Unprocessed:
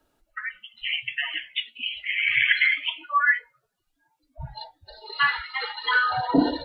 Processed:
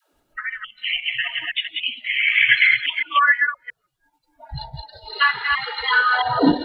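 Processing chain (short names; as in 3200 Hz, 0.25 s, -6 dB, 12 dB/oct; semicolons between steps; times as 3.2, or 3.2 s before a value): reverse delay 0.168 s, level -3.5 dB; dispersion lows, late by 0.133 s, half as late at 380 Hz; transient shaper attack 0 dB, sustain -5 dB; gain +4 dB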